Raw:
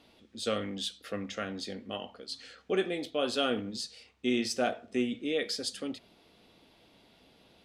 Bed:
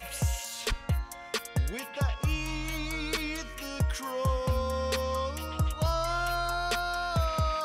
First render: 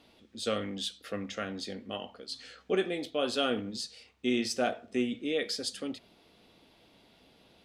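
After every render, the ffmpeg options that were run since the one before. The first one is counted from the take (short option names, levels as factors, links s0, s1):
-filter_complex "[0:a]asettb=1/sr,asplit=3[s0][s1][s2];[s0]atrim=end=2.344[s3];[s1]atrim=start=2.34:end=2.75,asetpts=PTS-STARTPTS,afade=t=in:d=0.004:c=qsin,afade=t=out:st=0.406:d=0.004:c=qsin,asplit=2[s4][s5];[s5]adelay=16,volume=0.447[s6];[s4][s6]amix=inputs=2:normalize=0,atrim=end_sample=18081[s7];[s2]atrim=start=2.746[s8];[s3][s7]acrossfade=d=0.004:c1=hsin:c2=qsin[s9];[s9][s8]acrossfade=d=0.004:c1=qsin:c2=hsin"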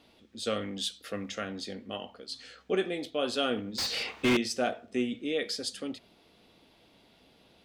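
-filter_complex "[0:a]asettb=1/sr,asplit=3[s0][s1][s2];[s0]atrim=end=0.764[s3];[s1]atrim=start=0.76:end=1.41,asetpts=PTS-STARTPTS,afade=t=in:d=0.004:c=qsin,afade=t=out:st=0.646:d=0.004:c=qsin,highshelf=f=4400:g=5[s4];[s2]atrim=start=1.406[s5];[s3][s4]acrossfade=d=0.004:c1=hsin:c2=qsin[s6];[s6][s5]acrossfade=d=0.004:c1=qsin:c2=hsin,asettb=1/sr,asplit=3[s7][s8][s9];[s7]atrim=end=3.784[s10];[s8]atrim=start=3.78:end=4.37,asetpts=PTS-STARTPTS,afade=t=in:d=0.004:c=qsin,afade=t=out:st=0.586:d=0.004:c=qsin,asplit=2[s11][s12];[s12]highpass=f=720:p=1,volume=56.2,asoftclip=type=tanh:threshold=0.158[s13];[s11][s13]amix=inputs=2:normalize=0,lowpass=f=2000:p=1,volume=0.501[s14];[s9]atrim=start=4.366[s15];[s10][s14]acrossfade=d=0.004:c1=hsin:c2=qsin[s16];[s16][s15]acrossfade=d=0.004:c1=qsin:c2=hsin"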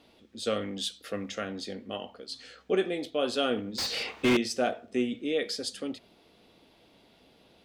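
-af "equalizer=f=450:t=o:w=1.7:g=2.5"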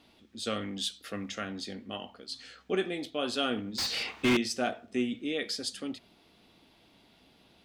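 -af "equalizer=f=500:t=o:w=0.76:g=-7"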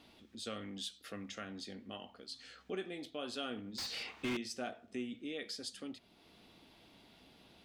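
-af "acompressor=threshold=0.00141:ratio=1.5"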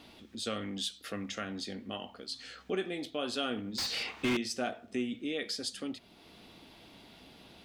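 -af "volume=2.24"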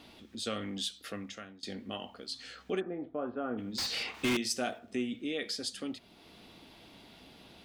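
-filter_complex "[0:a]asplit=3[s0][s1][s2];[s0]afade=t=out:st=2.79:d=0.02[s3];[s1]lowpass=f=1400:w=0.5412,lowpass=f=1400:w=1.3066,afade=t=in:st=2.79:d=0.02,afade=t=out:st=3.57:d=0.02[s4];[s2]afade=t=in:st=3.57:d=0.02[s5];[s3][s4][s5]amix=inputs=3:normalize=0,asettb=1/sr,asplit=3[s6][s7][s8];[s6]atrim=end=4.144[s9];[s7]atrim=start=4.14:end=4.79,asetpts=PTS-STARTPTS,afade=t=in:d=0.004:c=qsin,afade=t=out:st=0.646:d=0.004:c=qsin,highshelf=f=6000:g=9.5[s10];[s8]atrim=start=4.786[s11];[s9][s10]acrossfade=d=0.004:c1=hsin:c2=qsin[s12];[s12][s11]acrossfade=d=0.004:c1=qsin:c2=hsin,asplit=2[s13][s14];[s13]atrim=end=1.63,asetpts=PTS-STARTPTS,afade=t=out:st=1.02:d=0.61:silence=0.0749894[s15];[s14]atrim=start=1.63,asetpts=PTS-STARTPTS,afade=t=in:d=0.004:c=hsin:silence=0.0749894[s16];[s15][s16]concat=n=2:v=0:a=1"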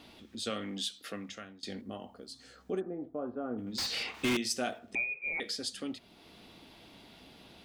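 -filter_complex "[0:a]asettb=1/sr,asplit=3[s0][s1][s2];[s0]atrim=end=0.504[s3];[s1]atrim=start=0.5:end=1.29,asetpts=PTS-STARTPTS,afade=t=in:d=0.004:c=qsin,afade=t=out:st=0.786:d=0.004:c=qsin,highpass=130[s4];[s2]atrim=start=1.286[s5];[s3][s4]acrossfade=d=0.004:c1=hsin:c2=qsin[s6];[s6][s5]acrossfade=d=0.004:c1=qsin:c2=hsin,asettb=1/sr,asplit=3[s7][s8][s9];[s7]atrim=end=1.814[s10];[s8]atrim=start=1.81:end=3.67,asetpts=PTS-STARTPTS,afade=t=in:d=0.004:c=qsin,afade=t=out:st=1.856:d=0.004:c=qsin,equalizer=f=2700:t=o:w=1.9:g=-13[s11];[s9]atrim=start=3.666[s12];[s10][s11]acrossfade=d=0.004:c1=hsin:c2=qsin[s13];[s13][s12]acrossfade=d=0.004:c1=qsin:c2=hsin,asettb=1/sr,asplit=3[s14][s15][s16];[s14]atrim=end=4.954[s17];[s15]atrim=start=4.95:end=5.4,asetpts=PTS-STARTPTS,afade=t=in:d=0.004:c=qsin,afade=t=out:st=0.446:d=0.004:c=qsin,lowpass=f=2300:t=q:w=0.5098,lowpass=f=2300:t=q:w=0.6013,lowpass=f=2300:t=q:w=0.9,lowpass=f=2300:t=q:w=2.563,afreqshift=-2700[s18];[s16]atrim=start=5.396[s19];[s17][s18]acrossfade=d=0.004:c1=hsin:c2=qsin[s20];[s20][s19]acrossfade=d=0.004:c1=qsin:c2=hsin"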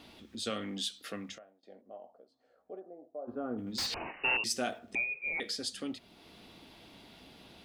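-filter_complex "[0:a]asplit=3[s0][s1][s2];[s0]afade=t=out:st=1.37:d=0.02[s3];[s1]bandpass=f=630:t=q:w=3.8,afade=t=in:st=1.37:d=0.02,afade=t=out:st=3.27:d=0.02[s4];[s2]afade=t=in:st=3.27:d=0.02[s5];[s3][s4][s5]amix=inputs=3:normalize=0,asettb=1/sr,asplit=3[s6][s7][s8];[s6]atrim=end=3.944[s9];[s7]atrim=start=3.94:end=4.44,asetpts=PTS-STARTPTS,afade=t=in:d=0.004:c=qsin,afade=t=out:st=0.496:d=0.004:c=qsin,lowpass=f=2600:t=q:w=0.5098,lowpass=f=2600:t=q:w=0.6013,lowpass=f=2600:t=q:w=0.9,lowpass=f=2600:t=q:w=2.563,afreqshift=-3000[s10];[s8]atrim=start=4.436[s11];[s9][s10]acrossfade=d=0.004:c1=hsin:c2=qsin[s12];[s12][s11]acrossfade=d=0.004:c1=qsin:c2=hsin"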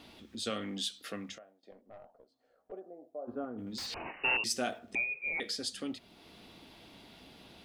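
-filter_complex "[0:a]asettb=1/sr,asplit=3[s0][s1][s2];[s0]atrim=end=1.714[s3];[s1]atrim=start=1.71:end=2.72,asetpts=PTS-STARTPTS,afade=t=in:d=0.004:c=qsin,afade=t=out:st=1.006:d=0.004:c=qsin,aeval=exprs='(tanh(178*val(0)+0.5)-tanh(0.5))/178':c=same[s4];[s2]atrim=start=2.716[s5];[s3][s4]acrossfade=d=0.004:c1=hsin:c2=qsin[s6];[s6][s5]acrossfade=d=0.004:c1=qsin:c2=hsin,asettb=1/sr,asplit=3[s7][s8][s9];[s7]atrim=end=3.444[s10];[s8]atrim=start=3.44:end=4.06,asetpts=PTS-STARTPTS,afade=t=in:d=0.004:c=qsin,afade=t=out:st=0.616:d=0.004:c=qsin,acompressor=threshold=0.0141:ratio=6:attack=3.2:release=140:knee=1:detection=peak[s11];[s9]atrim=start=4.056[s12];[s10][s11]acrossfade=d=0.004:c1=hsin:c2=qsin[s13];[s13][s12]acrossfade=d=0.004:c1=qsin:c2=hsin"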